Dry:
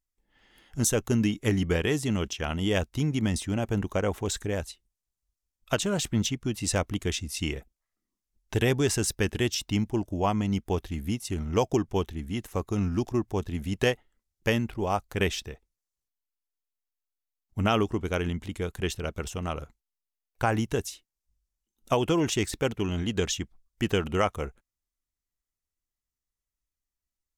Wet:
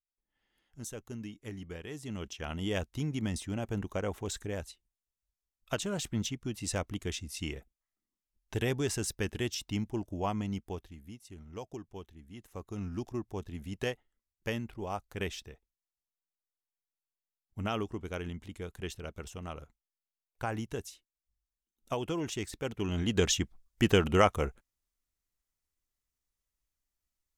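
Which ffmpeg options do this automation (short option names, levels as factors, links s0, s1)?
-af "volume=4.22,afade=t=in:st=1.87:d=0.69:silence=0.298538,afade=t=out:st=10.41:d=0.58:silence=0.281838,afade=t=in:st=12.27:d=0.7:silence=0.375837,afade=t=in:st=22.63:d=0.7:silence=0.281838"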